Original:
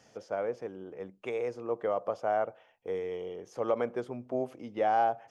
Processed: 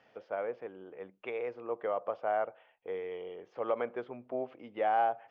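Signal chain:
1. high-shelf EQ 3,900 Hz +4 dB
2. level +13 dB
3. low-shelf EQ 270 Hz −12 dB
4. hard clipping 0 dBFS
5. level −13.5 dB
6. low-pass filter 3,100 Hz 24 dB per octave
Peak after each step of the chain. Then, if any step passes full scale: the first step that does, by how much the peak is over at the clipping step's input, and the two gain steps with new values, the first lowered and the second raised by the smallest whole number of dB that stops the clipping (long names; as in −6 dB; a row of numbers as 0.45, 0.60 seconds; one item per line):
−17.0, −4.0, −5.5, −5.5, −19.0, −19.0 dBFS
no step passes full scale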